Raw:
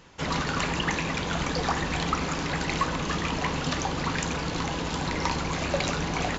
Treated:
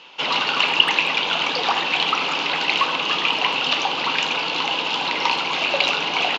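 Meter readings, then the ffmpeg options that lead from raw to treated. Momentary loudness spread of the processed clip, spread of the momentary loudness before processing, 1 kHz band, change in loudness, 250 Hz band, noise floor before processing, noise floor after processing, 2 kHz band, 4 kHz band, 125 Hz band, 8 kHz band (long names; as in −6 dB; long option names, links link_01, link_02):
5 LU, 2 LU, +7.5 dB, +9.0 dB, −4.5 dB, −31 dBFS, −25 dBFS, +10.0 dB, +14.5 dB, −13.0 dB, can't be measured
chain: -filter_complex "[0:a]asplit=2[link_01][link_02];[link_02]asoftclip=type=tanh:threshold=-21dB,volume=-7dB[link_03];[link_01][link_03]amix=inputs=2:normalize=0,highpass=370,equalizer=frequency=880:width_type=q:width=4:gain=5,equalizer=frequency=1800:width_type=q:width=4:gain=-8,equalizer=frequency=2800:width_type=q:width=4:gain=9,lowpass=frequency=3800:width=0.5412,lowpass=frequency=3800:width=1.3066,crystalizer=i=5.5:c=0,asplit=2[link_04][link_05];[link_05]adelay=80,highpass=300,lowpass=3400,asoftclip=type=hard:threshold=-10.5dB,volume=-13dB[link_06];[link_04][link_06]amix=inputs=2:normalize=0"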